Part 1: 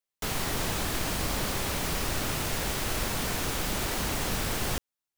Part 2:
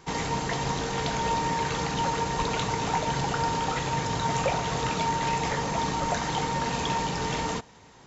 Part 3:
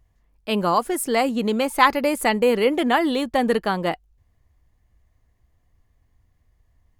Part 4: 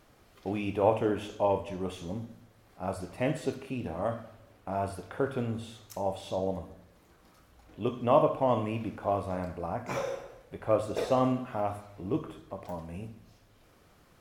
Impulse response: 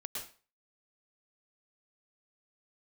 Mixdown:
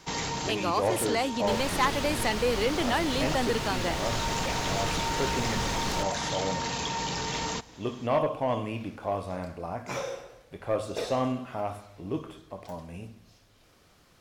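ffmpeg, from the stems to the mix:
-filter_complex "[0:a]lowpass=frequency=2200:poles=1,adelay=1250,volume=-1.5dB[link_01];[1:a]alimiter=limit=-22dB:level=0:latency=1:release=17,volume=-2.5dB[link_02];[2:a]highpass=frequency=200:width=0.5412,highpass=frequency=200:width=1.3066,volume=-7.5dB,asplit=2[link_03][link_04];[3:a]volume=-1dB[link_05];[link_04]apad=whole_len=355866[link_06];[link_02][link_06]sidechaincompress=threshold=-32dB:ratio=8:attack=11:release=330[link_07];[link_01][link_07][link_03][link_05]amix=inputs=4:normalize=0,equalizer=frequency=4900:width_type=o:width=2:gain=7,asoftclip=type=tanh:threshold=-17dB"

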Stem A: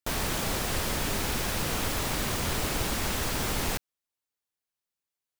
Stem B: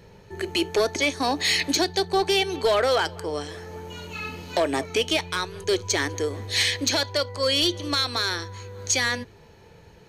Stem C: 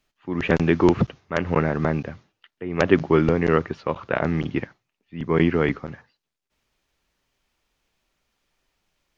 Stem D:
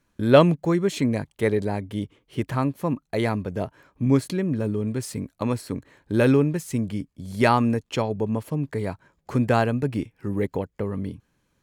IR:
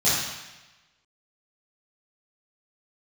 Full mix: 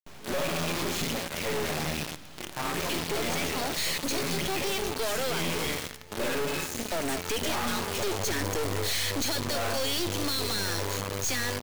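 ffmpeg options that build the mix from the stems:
-filter_complex "[0:a]lowpass=3600,acompressor=threshold=-37dB:ratio=8,aeval=exprs='abs(val(0))':channel_layout=same,volume=1dB,asplit=2[link_01][link_02];[link_02]volume=-15.5dB[link_03];[1:a]highshelf=frequency=6000:gain=9,bandreject=frequency=60:width_type=h:width=6,bandreject=frequency=120:width_type=h:width=6,bandreject=frequency=180:width_type=h:width=6,bandreject=frequency=240:width_type=h:width=6,bandreject=frequency=300:width_type=h:width=6,aeval=exprs='0.447*sin(PI/2*2.24*val(0)/0.447)':channel_layout=same,adelay=2350,volume=-4dB,afade=type=in:start_time=7.01:duration=0.35:silence=0.354813[link_04];[2:a]adynamicequalizer=threshold=0.00708:dfrequency=4100:dqfactor=1:tfrequency=4100:tqfactor=1:attack=5:release=100:ratio=0.375:range=3:mode=boostabove:tftype=bell,alimiter=limit=-11dB:level=0:latency=1,aexciter=amount=5.1:drive=9.2:freq=2200,volume=-8dB,asplit=2[link_05][link_06];[link_06]volume=-21dB[link_07];[3:a]highpass=530,volume=-9.5dB,asplit=2[link_08][link_09];[link_09]volume=-4dB[link_10];[4:a]atrim=start_sample=2205[link_11];[link_03][link_07][link_10]amix=inputs=3:normalize=0[link_12];[link_12][link_11]afir=irnorm=-1:irlink=0[link_13];[link_01][link_04][link_05][link_08][link_13]amix=inputs=5:normalize=0,acrossover=split=390[link_14][link_15];[link_15]acompressor=threshold=-20dB:ratio=6[link_16];[link_14][link_16]amix=inputs=2:normalize=0,aeval=exprs='(tanh(35.5*val(0)+0.7)-tanh(0.7))/35.5':channel_layout=same,acrusher=bits=6:dc=4:mix=0:aa=0.000001"

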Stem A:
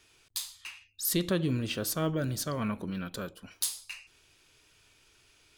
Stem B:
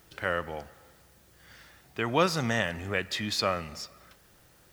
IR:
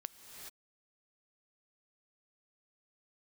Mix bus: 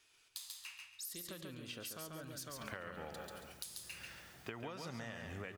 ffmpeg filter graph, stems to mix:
-filter_complex "[0:a]acompressor=threshold=-33dB:ratio=4,lowshelf=frequency=440:gain=-10.5,volume=-6.5dB,asplit=2[link_01][link_02];[link_02]volume=-4dB[link_03];[1:a]acompressor=threshold=-30dB:ratio=6,adelay=2500,volume=-4.5dB,asplit=3[link_04][link_05][link_06];[link_05]volume=-6dB[link_07];[link_06]volume=-4.5dB[link_08];[2:a]atrim=start_sample=2205[link_09];[link_07][link_09]afir=irnorm=-1:irlink=0[link_10];[link_03][link_08]amix=inputs=2:normalize=0,aecho=0:1:139|278|417|556:1|0.27|0.0729|0.0197[link_11];[link_01][link_04][link_10][link_11]amix=inputs=4:normalize=0,acompressor=threshold=-43dB:ratio=5"

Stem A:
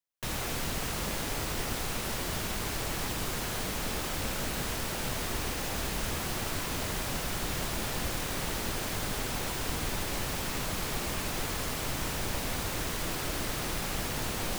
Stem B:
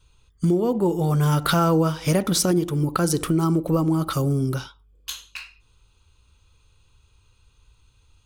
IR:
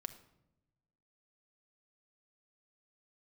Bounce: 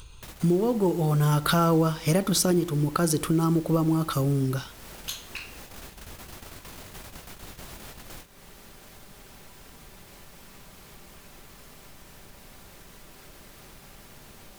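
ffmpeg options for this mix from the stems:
-filter_complex "[0:a]volume=-16dB,asplit=2[link_01][link_02];[link_02]volume=-12.5dB[link_03];[1:a]volume=-2.5dB,asplit=2[link_04][link_05];[link_05]apad=whole_len=643077[link_06];[link_01][link_06]sidechaingate=range=-33dB:threshold=-59dB:ratio=16:detection=peak[link_07];[2:a]atrim=start_sample=2205[link_08];[link_03][link_08]afir=irnorm=-1:irlink=0[link_09];[link_07][link_04][link_09]amix=inputs=3:normalize=0,equalizer=frequency=13000:width=1.4:gain=3,acompressor=mode=upward:threshold=-34dB:ratio=2.5,acrusher=bits=8:mode=log:mix=0:aa=0.000001"

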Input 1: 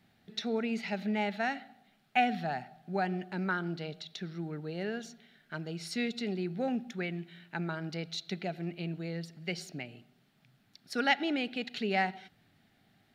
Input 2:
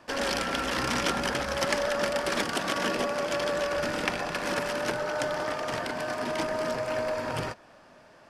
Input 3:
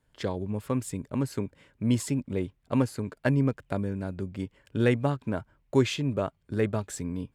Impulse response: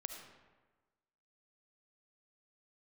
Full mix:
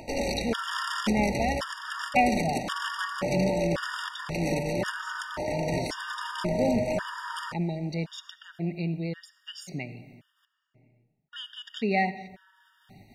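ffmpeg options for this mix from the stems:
-filter_complex "[0:a]agate=range=-33dB:threshold=-59dB:ratio=3:detection=peak,volume=1.5dB,asplit=3[link_01][link_02][link_03];[link_01]atrim=end=10.45,asetpts=PTS-STARTPTS,afade=type=out:start_time=10.446:duration=0.004:curve=hsin[link_04];[link_02]atrim=start=10.45:end=11.33,asetpts=PTS-STARTPTS,volume=0[link_05];[link_03]atrim=start=11.33,asetpts=PTS-STARTPTS,afade=type=in:duration=0.004:curve=hsin[link_06];[link_04][link_05][link_06]concat=n=3:v=0:a=1,asplit=2[link_07][link_08];[link_08]volume=-5dB[link_09];[1:a]alimiter=limit=-18.5dB:level=0:latency=1:release=321,volume=2dB[link_10];[2:a]volume=-15.5dB[link_11];[3:a]atrim=start_sample=2205[link_12];[link_09][link_12]afir=irnorm=-1:irlink=0[link_13];[link_07][link_10][link_11][link_13]amix=inputs=4:normalize=0,lowshelf=frequency=110:gain=11,acompressor=mode=upward:threshold=-35dB:ratio=2.5,afftfilt=real='re*gt(sin(2*PI*0.93*pts/sr)*(1-2*mod(floor(b*sr/1024/940),2)),0)':imag='im*gt(sin(2*PI*0.93*pts/sr)*(1-2*mod(floor(b*sr/1024/940),2)),0)':win_size=1024:overlap=0.75"

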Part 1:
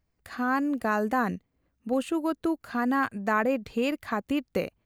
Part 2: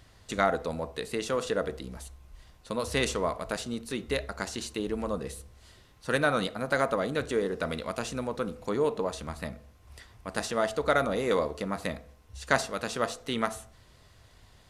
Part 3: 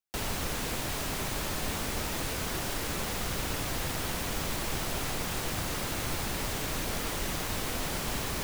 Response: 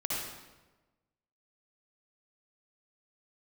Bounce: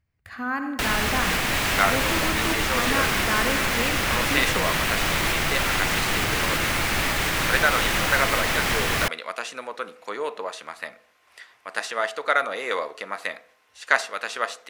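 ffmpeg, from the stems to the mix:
-filter_complex "[0:a]equalizer=frequency=100:width_type=o:width=1.2:gain=14.5,volume=-9dB,asplit=2[link_01][link_02];[link_02]volume=-10dB[link_03];[1:a]highpass=470,adelay=1400,volume=-1dB[link_04];[2:a]alimiter=limit=-23.5dB:level=0:latency=1:release=177,adelay=650,volume=2.5dB,asplit=2[link_05][link_06];[link_06]volume=-5dB[link_07];[3:a]atrim=start_sample=2205[link_08];[link_03][link_07]amix=inputs=2:normalize=0[link_09];[link_09][link_08]afir=irnorm=-1:irlink=0[link_10];[link_01][link_04][link_05][link_10]amix=inputs=4:normalize=0,equalizer=frequency=2000:width=0.74:gain=10"

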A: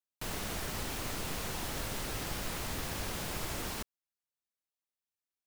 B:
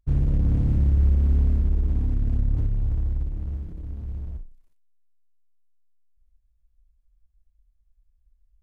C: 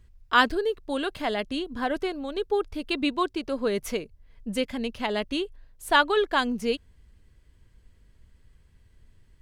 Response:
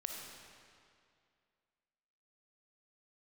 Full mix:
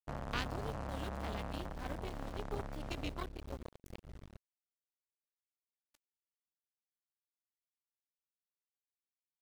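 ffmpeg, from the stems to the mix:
-filter_complex "[0:a]aemphasis=mode=reproduction:type=50fm,alimiter=level_in=6dB:limit=-24dB:level=0:latency=1,volume=-6dB,adelay=1900,volume=-16dB[link_01];[1:a]asoftclip=type=hard:threshold=-28dB,volume=1dB[link_02];[2:a]aeval=exprs='val(0)*gte(abs(val(0)),0.0188)':channel_layout=same,volume=-18dB,asplit=2[link_03][link_04];[link_04]apad=whole_len=324770[link_05];[link_01][link_05]sidechaincompress=threshold=-49dB:ratio=8:attack=31:release=608[link_06];[link_06][link_02][link_03]amix=inputs=3:normalize=0,acrossover=split=300|3000[link_07][link_08][link_09];[link_08]acompressor=threshold=-40dB:ratio=3[link_10];[link_07][link_10][link_09]amix=inputs=3:normalize=0,acrusher=bits=3:mix=0:aa=0.5"

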